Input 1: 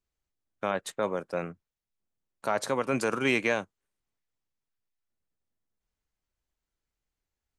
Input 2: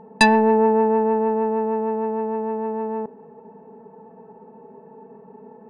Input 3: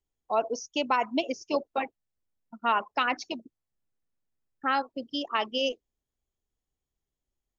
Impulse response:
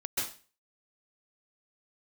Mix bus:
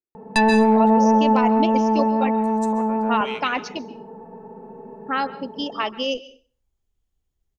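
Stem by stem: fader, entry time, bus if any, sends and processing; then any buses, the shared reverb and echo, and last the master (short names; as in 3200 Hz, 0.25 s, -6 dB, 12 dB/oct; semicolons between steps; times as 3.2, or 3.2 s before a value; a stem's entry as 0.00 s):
+0.5 dB, 0.00 s, send -18.5 dB, stepped band-pass 2.2 Hz 350–7600 Hz
+2.0 dB, 0.15 s, send -9.5 dB, low shelf 73 Hz +10 dB
+2.0 dB, 0.45 s, send -21 dB, low shelf 130 Hz +12 dB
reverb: on, RT60 0.35 s, pre-delay 0.122 s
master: limiter -8.5 dBFS, peak gain reduction 10 dB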